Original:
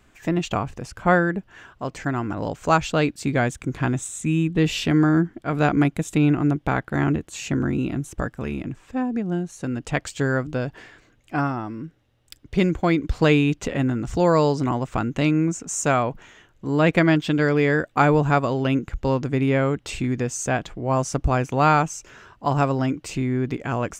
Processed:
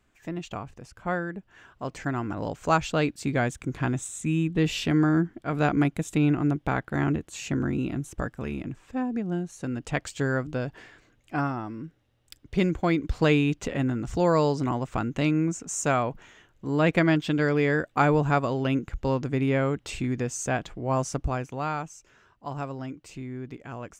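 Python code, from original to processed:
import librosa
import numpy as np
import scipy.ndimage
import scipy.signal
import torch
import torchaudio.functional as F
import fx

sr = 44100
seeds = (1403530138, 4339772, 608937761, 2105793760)

y = fx.gain(x, sr, db=fx.line((1.3, -11.0), (1.87, -4.0), (21.06, -4.0), (21.68, -13.0)))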